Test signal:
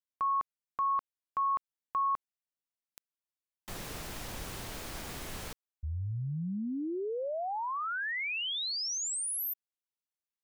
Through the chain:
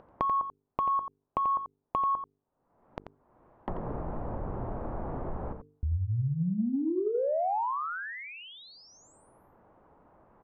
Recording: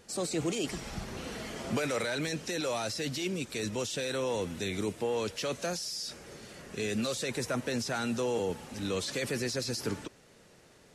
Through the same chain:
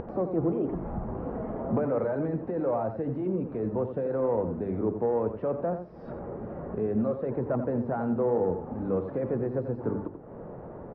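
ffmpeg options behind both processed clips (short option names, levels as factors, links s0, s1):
-filter_complex "[0:a]lowpass=f=1000:w=0.5412,lowpass=f=1000:w=1.3066,bandreject=f=50:t=h:w=6,bandreject=f=100:t=h:w=6,bandreject=f=150:t=h:w=6,bandreject=f=200:t=h:w=6,bandreject=f=250:t=h:w=6,bandreject=f=300:t=h:w=6,bandreject=f=350:t=h:w=6,bandreject=f=400:t=h:w=6,bandreject=f=450:t=h:w=6,acompressor=mode=upward:threshold=0.0178:ratio=2.5:attack=17:release=353:knee=2.83:detection=peak,asoftclip=type=tanh:threshold=0.0944,asplit=2[s0][s1];[s1]adelay=87.46,volume=0.355,highshelf=f=4000:g=-1.97[s2];[s0][s2]amix=inputs=2:normalize=0,volume=2"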